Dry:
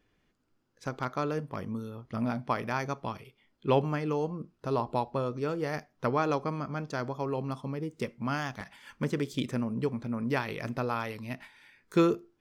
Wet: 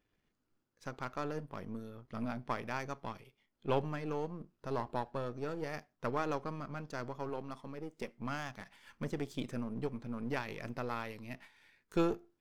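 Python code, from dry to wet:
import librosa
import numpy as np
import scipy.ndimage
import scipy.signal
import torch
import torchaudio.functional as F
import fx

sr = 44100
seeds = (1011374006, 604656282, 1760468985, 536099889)

y = np.where(x < 0.0, 10.0 ** (-7.0 / 20.0) * x, x)
y = fx.peak_eq(y, sr, hz=97.0, db=-11.0, octaves=1.2, at=(7.29, 8.19))
y = F.gain(torch.from_numpy(y), -5.0).numpy()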